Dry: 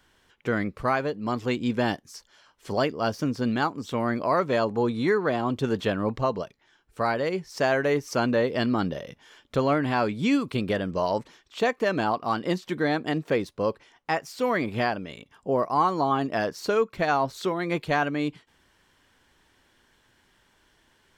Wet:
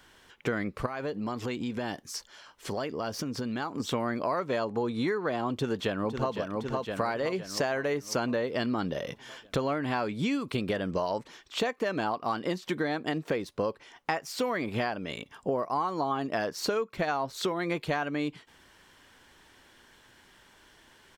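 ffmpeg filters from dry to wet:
-filter_complex "[0:a]asettb=1/sr,asplit=3[s0][s1][s2];[s0]atrim=end=0.864[s3];[s1]atrim=start=0.86:end=3.8,asetpts=PTS-STARTPTS,afade=t=in:d=0.004:c=qsin,afade=t=out:st=2.936:d=0.004:c=qsin,acompressor=threshold=0.02:ratio=6:attack=3.2:release=140:knee=1:detection=peak[s4];[s2]atrim=start=3.796[s5];[s3][s4]acrossfade=d=0.004:c1=hsin:c2=qsin[s6];[s6][s5]acrossfade=d=0.004:c1=qsin:c2=hsin,asplit=2[s7][s8];[s8]afade=t=in:st=5.53:d=0.01,afade=t=out:st=6.33:d=0.01,aecho=0:1:510|1020|1530|2040|2550|3060|3570:0.375837|0.206711|0.113691|0.0625299|0.0343915|0.0189153|0.0104034[s9];[s7][s9]amix=inputs=2:normalize=0,lowshelf=f=190:g=-4.5,acompressor=threshold=0.0224:ratio=6,volume=2"

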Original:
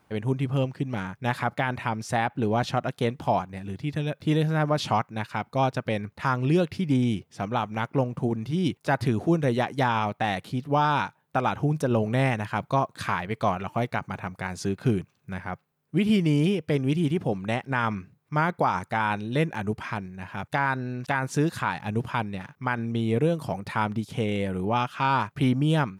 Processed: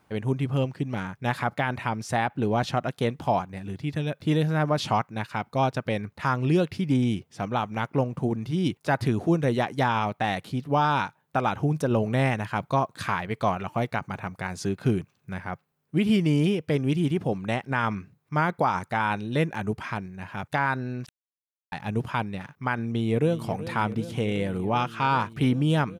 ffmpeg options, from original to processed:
-filter_complex "[0:a]asplit=2[s0][s1];[s1]afade=t=in:st=22.86:d=0.01,afade=t=out:st=23.43:d=0.01,aecho=0:1:380|760|1140|1520|1900|2280|2660|3040|3420|3800|4180|4560:0.211349|0.179647|0.1527|0.129795|0.110325|0.0937766|0.0797101|0.0677536|0.0575906|0.048952|0.0416092|0.0353678[s2];[s0][s2]amix=inputs=2:normalize=0,asplit=3[s3][s4][s5];[s3]atrim=end=21.09,asetpts=PTS-STARTPTS,afade=t=out:st=21.086:d=0.004:c=hsin[s6];[s4]atrim=start=21.09:end=21.72,asetpts=PTS-STARTPTS,volume=0[s7];[s5]atrim=start=21.72,asetpts=PTS-STARTPTS,afade=t=in:d=0.004:c=hsin[s8];[s6][s7][s8]concat=n=3:v=0:a=1"

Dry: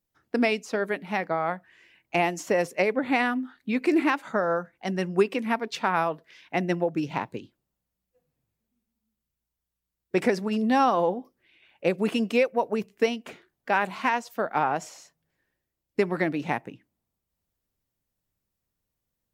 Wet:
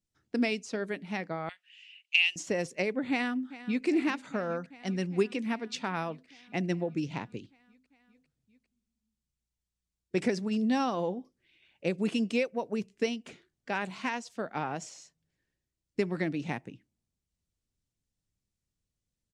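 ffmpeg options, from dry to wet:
-filter_complex "[0:a]asettb=1/sr,asplit=3[s0][s1][s2];[s0]atrim=end=1.494[s3];[s1]atrim=start=1.49:end=2.36,asetpts=PTS-STARTPTS,afade=t=in:d=0.004:c=qsin,afade=t=out:st=0.866:d=0.004:c=qsin,highpass=f=2800:t=q:w=7.3[s4];[s2]atrim=start=2.356[s5];[s3][s4]acrossfade=d=0.004:c1=hsin:c2=qsin[s6];[s6][s5]acrossfade=d=0.004:c1=qsin:c2=hsin,asplit=2[s7][s8];[s8]afade=t=in:st=3.1:d=0.01,afade=t=out:st=3.86:d=0.01,aecho=0:1:400|800|1200|1600|2000|2400|2800|3200|3600|4000|4400|4800:0.158489|0.126791|0.101433|0.0811465|0.0649172|0.0519338|0.041547|0.0332376|0.0265901|0.0212721|0.0170177|0.0136141[s9];[s7][s9]amix=inputs=2:normalize=0,lowpass=f=8800:w=0.5412,lowpass=f=8800:w=1.3066,equalizer=f=950:w=0.45:g=-11"

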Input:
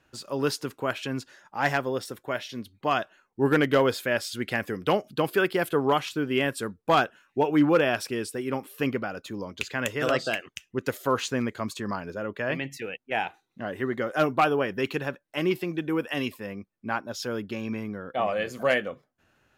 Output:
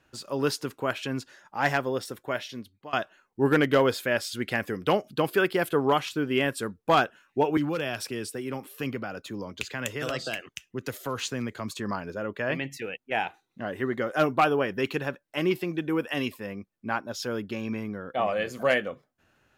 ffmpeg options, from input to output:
-filter_complex "[0:a]asettb=1/sr,asplit=3[s0][s1][s2];[s0]atrim=end=7.574[s3];[s1]atrim=start=7.57:end=11.72,asetpts=PTS-STARTPTS,afade=t=in:d=0.004:c=qsin,afade=t=out:st=4.146:d=0.004:c=qsin,acrossover=split=150|3000[s4][s5][s6];[s5]acompressor=threshold=0.0282:ratio=2.5:attack=3.2:release=140:knee=2.83:detection=peak[s7];[s4][s7][s6]amix=inputs=3:normalize=0[s8];[s2]atrim=start=11.716[s9];[s3][s8]acrossfade=d=0.004:c1=hsin:c2=qsin[s10];[s10][s9]acrossfade=d=0.004:c1=qsin:c2=hsin,asplit=2[s11][s12];[s11]atrim=end=2.93,asetpts=PTS-STARTPTS,afade=t=out:st=2.44:d=0.49:silence=0.0707946[s13];[s12]atrim=start=2.93,asetpts=PTS-STARTPTS,afade=t=in:d=0.004:c=hsin:silence=0.0707946[s14];[s13][s14]concat=n=2:v=0:a=1"

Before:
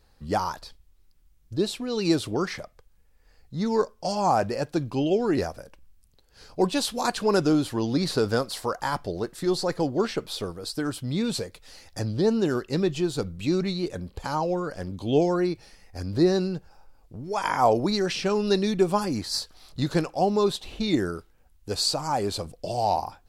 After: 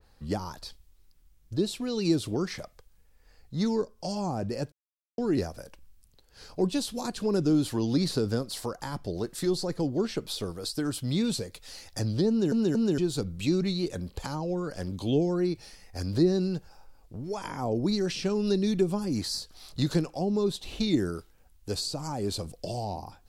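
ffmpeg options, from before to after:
-filter_complex "[0:a]asplit=6[s0][s1][s2][s3][s4][s5];[s0]atrim=end=4.72,asetpts=PTS-STARTPTS,afade=t=out:st=4.716:d=0.004:c=hsin[s6];[s1]atrim=start=4.72:end=5.18,asetpts=PTS-STARTPTS,volume=0[s7];[s2]atrim=start=5.18:end=12.522,asetpts=PTS-STARTPTS,afade=t=in:d=0.004:c=hsin[s8];[s3]atrim=start=12.288:end=12.522[s9];[s4]atrim=start=12.288:end=12.522[s10];[s5]atrim=start=12.978[s11];[s6][s7][s8]concat=n=3:v=0:a=1[s12];[s12][s9]acrossfade=d=0.004:c1=hsin:c2=hsin[s13];[s13][s10]acrossfade=d=0.004:c1=hsin:c2=hsin[s14];[s14][s11]acrossfade=d=0.004:c1=hsin:c2=hsin,acrossover=split=390[s15][s16];[s16]acompressor=threshold=0.0158:ratio=10[s17];[s15][s17]amix=inputs=2:normalize=0,adynamicequalizer=threshold=0.00251:dfrequency=3000:dqfactor=0.7:tfrequency=3000:tqfactor=0.7:attack=5:release=100:ratio=0.375:range=3:mode=boostabove:tftype=highshelf"

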